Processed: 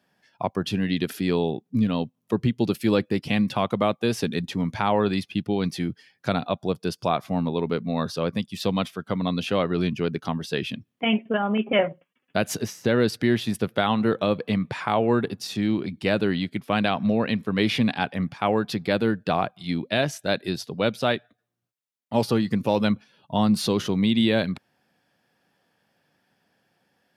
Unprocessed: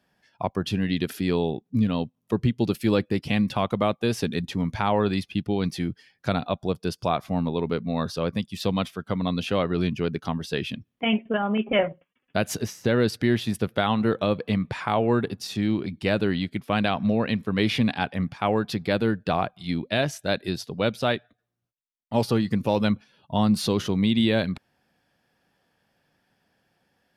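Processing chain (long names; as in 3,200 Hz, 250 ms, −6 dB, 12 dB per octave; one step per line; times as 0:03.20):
high-pass filter 110 Hz
level +1 dB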